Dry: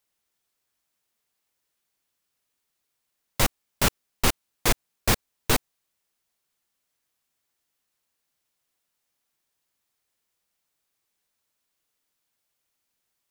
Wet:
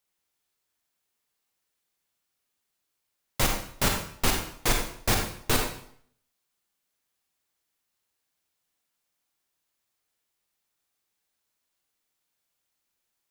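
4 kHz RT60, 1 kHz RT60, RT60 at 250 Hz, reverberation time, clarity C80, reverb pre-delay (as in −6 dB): 0.55 s, 0.60 s, 0.60 s, 0.65 s, 8.0 dB, 39 ms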